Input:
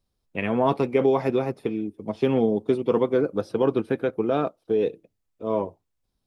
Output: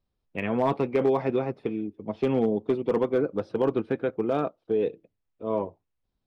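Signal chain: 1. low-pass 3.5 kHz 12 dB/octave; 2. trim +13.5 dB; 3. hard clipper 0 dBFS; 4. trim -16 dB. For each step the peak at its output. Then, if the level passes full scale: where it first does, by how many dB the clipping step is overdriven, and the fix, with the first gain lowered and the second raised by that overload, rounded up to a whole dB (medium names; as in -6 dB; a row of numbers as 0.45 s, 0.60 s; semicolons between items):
-8.5 dBFS, +5.0 dBFS, 0.0 dBFS, -16.0 dBFS; step 2, 5.0 dB; step 2 +8.5 dB, step 4 -11 dB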